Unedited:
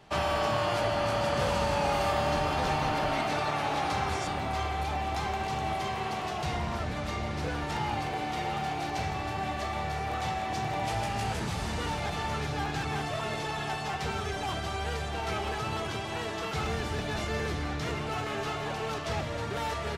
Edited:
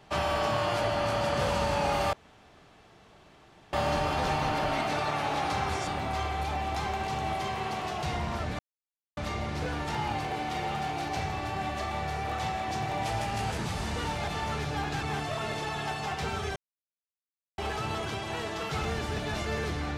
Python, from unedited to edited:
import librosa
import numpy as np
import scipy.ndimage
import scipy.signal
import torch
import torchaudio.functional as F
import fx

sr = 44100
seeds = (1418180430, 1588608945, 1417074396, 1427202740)

y = fx.edit(x, sr, fx.insert_room_tone(at_s=2.13, length_s=1.6),
    fx.insert_silence(at_s=6.99, length_s=0.58),
    fx.silence(start_s=14.38, length_s=1.02), tone=tone)